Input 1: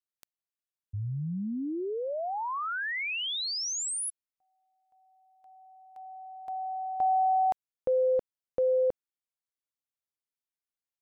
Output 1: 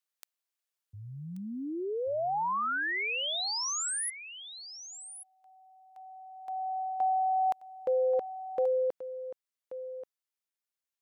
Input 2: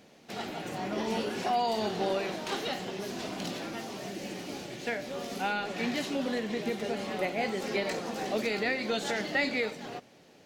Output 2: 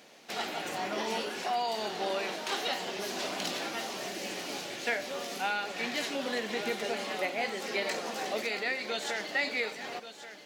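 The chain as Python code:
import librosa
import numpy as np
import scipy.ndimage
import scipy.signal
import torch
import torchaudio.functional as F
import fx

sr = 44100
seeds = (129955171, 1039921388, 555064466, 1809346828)

p1 = fx.highpass(x, sr, hz=740.0, slope=6)
p2 = fx.rider(p1, sr, range_db=3, speed_s=0.5)
p3 = p2 + fx.echo_single(p2, sr, ms=1132, db=-12.5, dry=0)
y = p3 * librosa.db_to_amplitude(2.5)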